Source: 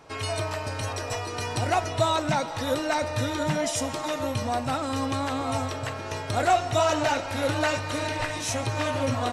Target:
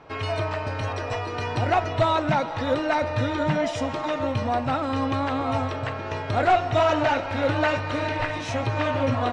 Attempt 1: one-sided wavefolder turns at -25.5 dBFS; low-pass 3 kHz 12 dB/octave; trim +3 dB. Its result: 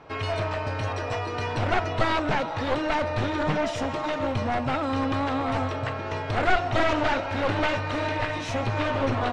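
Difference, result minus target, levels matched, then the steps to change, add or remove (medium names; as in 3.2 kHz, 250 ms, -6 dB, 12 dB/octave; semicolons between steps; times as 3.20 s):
one-sided wavefolder: distortion +17 dB
change: one-sided wavefolder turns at -16.5 dBFS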